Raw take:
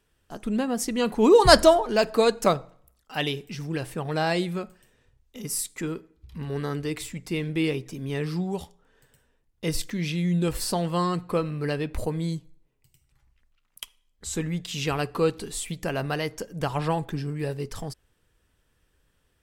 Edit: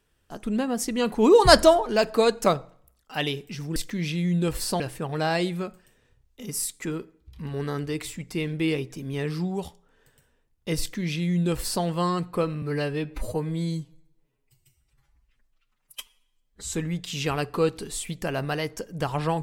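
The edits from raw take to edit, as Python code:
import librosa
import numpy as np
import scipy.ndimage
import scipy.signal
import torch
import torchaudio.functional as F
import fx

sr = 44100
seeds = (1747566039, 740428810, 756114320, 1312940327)

y = fx.edit(x, sr, fx.duplicate(start_s=9.76, length_s=1.04, to_s=3.76),
    fx.stretch_span(start_s=11.58, length_s=2.7, factor=1.5), tone=tone)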